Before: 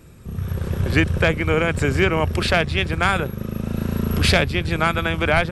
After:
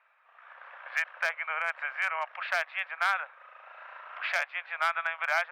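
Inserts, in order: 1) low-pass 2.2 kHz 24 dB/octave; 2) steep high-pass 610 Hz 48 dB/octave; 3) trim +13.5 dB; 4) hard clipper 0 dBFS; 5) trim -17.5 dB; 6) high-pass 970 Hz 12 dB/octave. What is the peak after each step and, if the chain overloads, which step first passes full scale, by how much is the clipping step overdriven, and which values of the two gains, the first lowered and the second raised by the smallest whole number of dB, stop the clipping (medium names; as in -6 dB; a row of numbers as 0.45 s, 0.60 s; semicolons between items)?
-5.0 dBFS, -6.5 dBFS, +7.0 dBFS, 0.0 dBFS, -17.5 dBFS, -13.5 dBFS; step 3, 7.0 dB; step 3 +6.5 dB, step 5 -10.5 dB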